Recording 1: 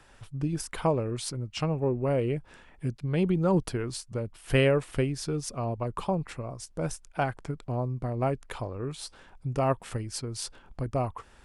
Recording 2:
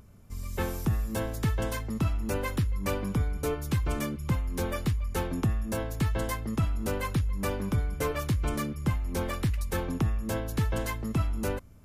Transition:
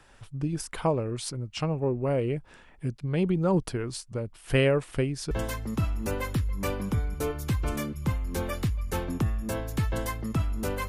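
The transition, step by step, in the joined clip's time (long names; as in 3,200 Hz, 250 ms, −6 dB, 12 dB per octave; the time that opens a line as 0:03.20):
recording 1
0:05.31: continue with recording 2 from 0:01.54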